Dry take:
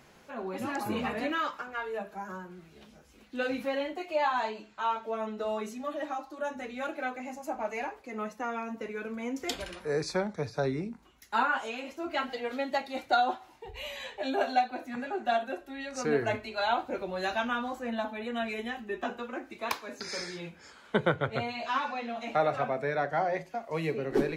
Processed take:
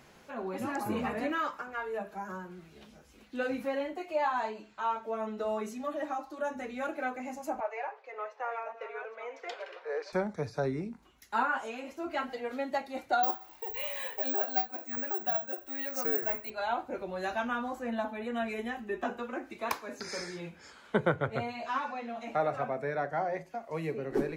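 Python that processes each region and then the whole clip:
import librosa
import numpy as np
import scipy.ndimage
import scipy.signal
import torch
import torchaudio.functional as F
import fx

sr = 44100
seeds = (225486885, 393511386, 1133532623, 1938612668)

y = fx.chain(x, sr, fx.reverse_delay(ms=563, wet_db=-10.5),
    fx.steep_highpass(hz=460.0, slope=36),
    fx.air_absorb(metres=220.0), at=(7.6, 10.13))
y = fx.chain(y, sr, fx.resample_bad(factor=2, down='filtered', up='zero_stuff'),
    fx.peak_eq(hz=100.0, db=-11.5, octaves=2.5),
    fx.band_squash(depth_pct=70), at=(13.23, 16.5))
y = fx.dynamic_eq(y, sr, hz=3500.0, q=1.2, threshold_db=-52.0, ratio=4.0, max_db=-7)
y = fx.rider(y, sr, range_db=3, speed_s=2.0)
y = y * 10.0 ** (-2.5 / 20.0)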